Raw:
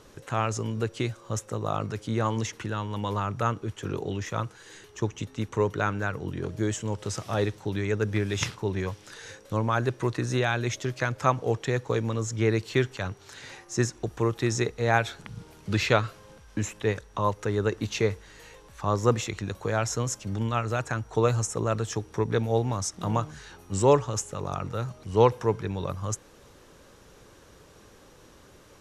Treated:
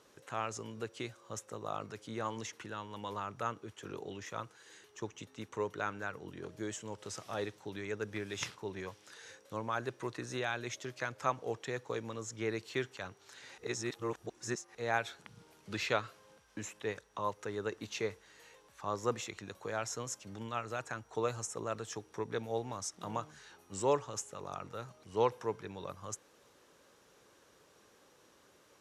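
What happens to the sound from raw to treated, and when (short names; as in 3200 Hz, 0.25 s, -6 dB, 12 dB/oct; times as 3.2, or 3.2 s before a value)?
13.58–14.75 reverse
whole clip: HPF 350 Hz 6 dB/oct; gain -8.5 dB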